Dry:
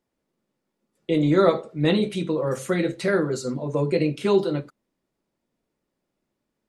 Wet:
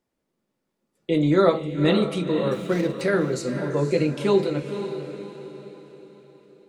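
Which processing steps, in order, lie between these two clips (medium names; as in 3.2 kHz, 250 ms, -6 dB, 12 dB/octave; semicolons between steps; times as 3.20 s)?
2.53–3.01 s: median filter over 15 samples; echo that smears into a reverb 510 ms, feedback 44%, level -9 dB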